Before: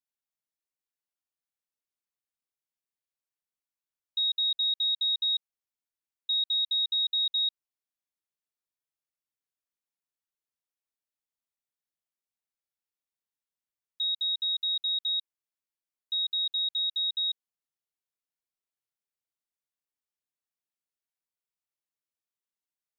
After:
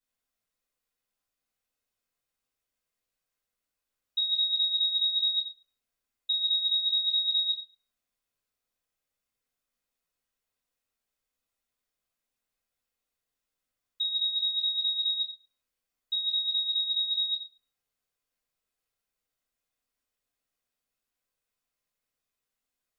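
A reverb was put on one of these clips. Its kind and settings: simulated room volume 39 m³, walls mixed, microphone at 2 m; trim -3 dB

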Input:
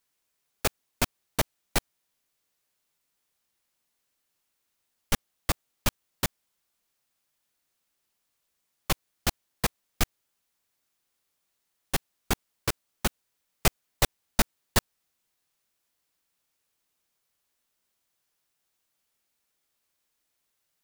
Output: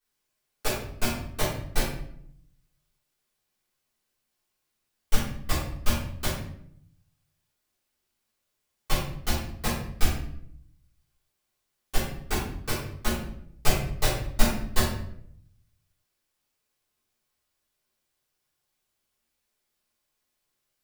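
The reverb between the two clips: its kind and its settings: simulated room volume 130 m³, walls mixed, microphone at 3.6 m; trim -12 dB

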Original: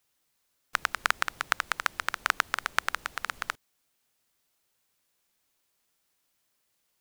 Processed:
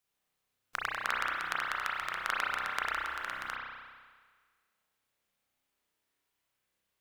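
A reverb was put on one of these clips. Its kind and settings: spring tank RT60 1.6 s, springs 31 ms, chirp 30 ms, DRR -5 dB; trim -9.5 dB

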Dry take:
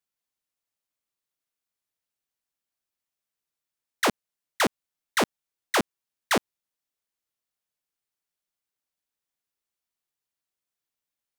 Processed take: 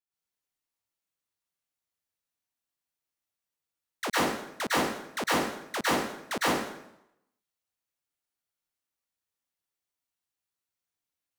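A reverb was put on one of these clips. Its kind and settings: plate-style reverb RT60 0.81 s, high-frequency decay 0.85×, pre-delay 95 ms, DRR -9 dB; trim -10.5 dB

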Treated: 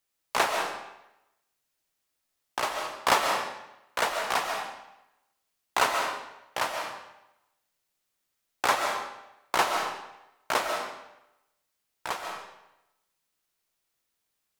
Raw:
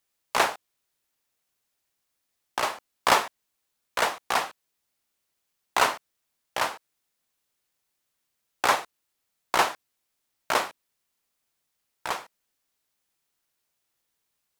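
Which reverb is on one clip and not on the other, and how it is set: algorithmic reverb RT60 0.9 s, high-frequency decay 0.9×, pre-delay 100 ms, DRR 3 dB; trim -2.5 dB

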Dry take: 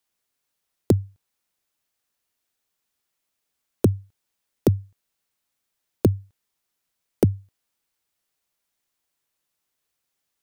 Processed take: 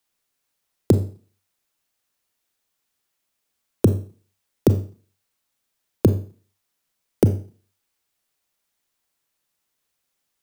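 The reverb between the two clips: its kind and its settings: Schroeder reverb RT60 0.41 s, combs from 28 ms, DRR 9.5 dB; trim +2 dB

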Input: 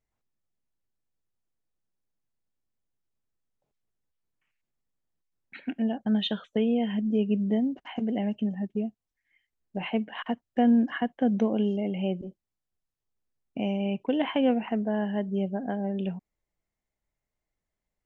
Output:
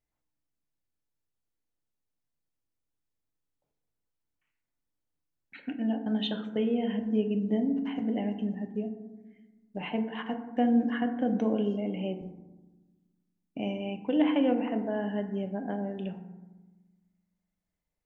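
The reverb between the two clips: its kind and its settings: FDN reverb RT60 1.2 s, low-frequency decay 1.5×, high-frequency decay 0.35×, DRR 5.5 dB; trim -3.5 dB

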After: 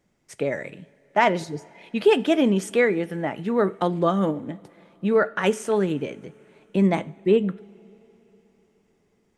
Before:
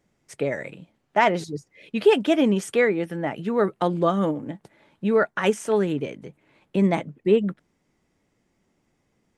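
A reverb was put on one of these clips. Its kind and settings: two-slope reverb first 0.46 s, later 4.2 s, from -18 dB, DRR 15.5 dB

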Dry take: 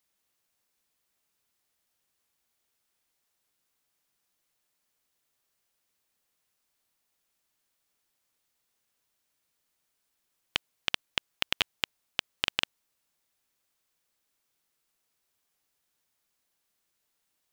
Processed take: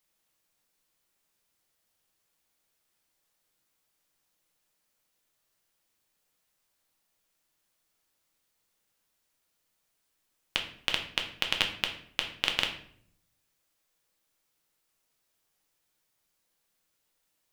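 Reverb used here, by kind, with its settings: simulated room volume 100 m³, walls mixed, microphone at 0.59 m

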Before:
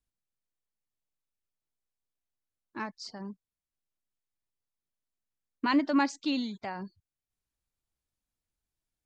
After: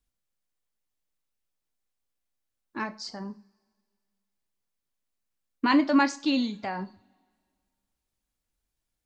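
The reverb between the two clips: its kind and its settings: two-slope reverb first 0.33 s, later 2 s, from -27 dB, DRR 8.5 dB; trim +4 dB

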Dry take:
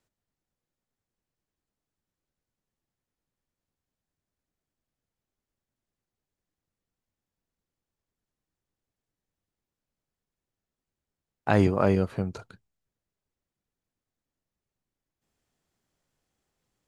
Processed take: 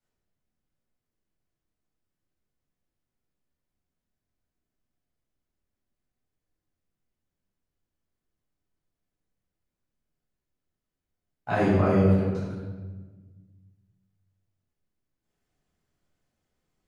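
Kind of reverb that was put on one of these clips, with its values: simulated room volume 1000 m³, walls mixed, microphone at 7.5 m; trim -13.5 dB

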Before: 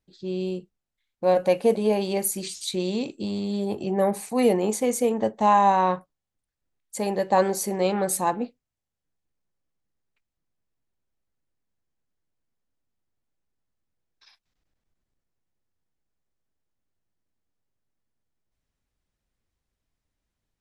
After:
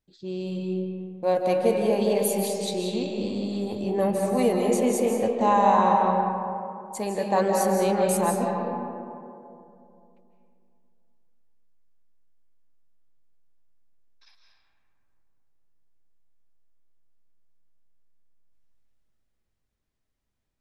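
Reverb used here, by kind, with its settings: algorithmic reverb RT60 2.7 s, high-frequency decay 0.35×, pre-delay 120 ms, DRR 0 dB; trim -3 dB

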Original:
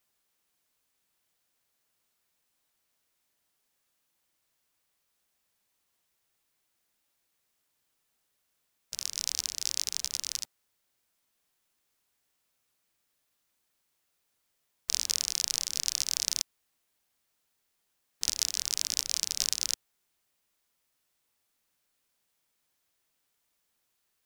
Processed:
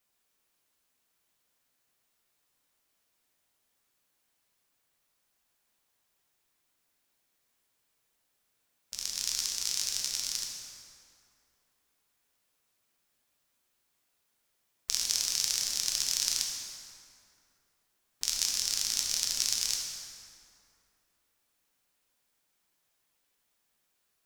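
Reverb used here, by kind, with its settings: plate-style reverb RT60 2.6 s, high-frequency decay 0.6×, DRR -1 dB; trim -2 dB

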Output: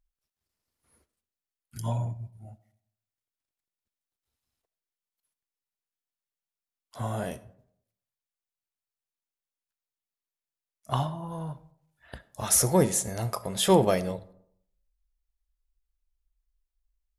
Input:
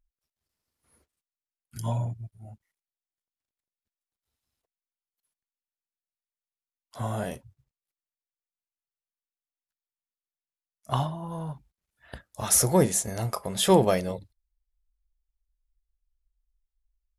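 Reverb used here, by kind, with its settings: algorithmic reverb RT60 0.71 s, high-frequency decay 0.45×, pre-delay 25 ms, DRR 17.5 dB; trim -1 dB

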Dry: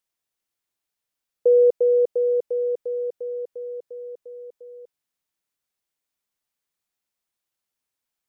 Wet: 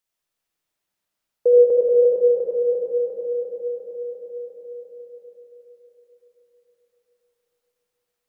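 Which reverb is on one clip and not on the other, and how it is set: algorithmic reverb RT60 4.3 s, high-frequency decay 0.4×, pre-delay 35 ms, DRR -4 dB

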